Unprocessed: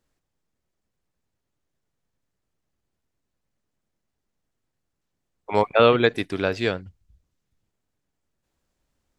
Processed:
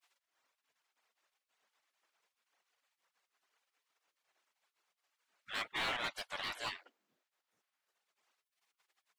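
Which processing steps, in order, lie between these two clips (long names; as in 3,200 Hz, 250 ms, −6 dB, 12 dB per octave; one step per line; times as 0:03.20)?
reverb reduction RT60 1.2 s
gate on every frequency bin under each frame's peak −30 dB weak
mid-hump overdrive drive 26 dB, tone 1,500 Hz, clips at −24.5 dBFS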